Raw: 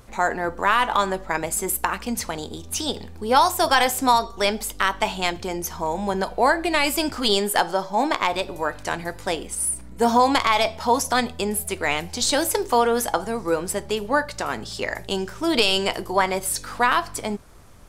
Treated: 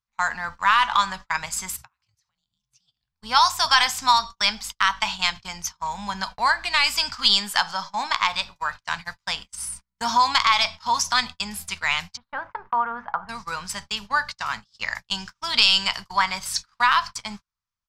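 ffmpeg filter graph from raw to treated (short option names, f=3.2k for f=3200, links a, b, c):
-filter_complex "[0:a]asettb=1/sr,asplit=3[a][b][c];[a]atrim=end=1.764[d];[b]atrim=start=1.76:end=3.12,asetpts=PTS-STARTPTS,afade=t=in:d=0.004:c=qsin,afade=t=out:st=1.356:d=0.004:c=qsin,acompressor=threshold=-31dB:ratio=8:attack=3.2:release=140:knee=1:detection=peak,afreqshift=-130[e];[c]atrim=start=3.116[f];[d][e]acrossfade=d=0.004:c1=hsin:c2=qsin[g];[g][f]acrossfade=d=0.004:c1=qsin:c2=hsin,asettb=1/sr,asplit=3[h][i][j];[h]atrim=end=12.174[k];[i]atrim=start=12.17:end=13.29,asetpts=PTS-STARTPTS,afade=t=in:d=0.004:c=qsin,afade=t=out:st=1.116:d=0.004:c=qsin,lowpass=f=1.5k:w=0.5412,lowpass=f=1.5k:w=1.3066,lowshelf=f=230:g=-3.5,bandreject=f=50:t=h:w=6,bandreject=f=100:t=h:w=6,bandreject=f=150:t=h:w=6,bandreject=f=200:t=h:w=6,bandreject=f=250:t=h:w=6,bandreject=f=300:t=h:w=6,bandreject=f=350:t=h:w=6[l];[j]atrim=start=13.286[m];[k][l]acrossfade=d=0.004:c1=hsin:c2=qsin[n];[n][m]acrossfade=d=0.004:c1=qsin:c2=hsin,agate=range=-39dB:threshold=-29dB:ratio=16:detection=peak,firequalizer=gain_entry='entry(200,0);entry(330,-21);entry(1000,9);entry(1800,8);entry(5200,15);entry(9700,-2)':delay=0.05:min_phase=1,volume=-7dB"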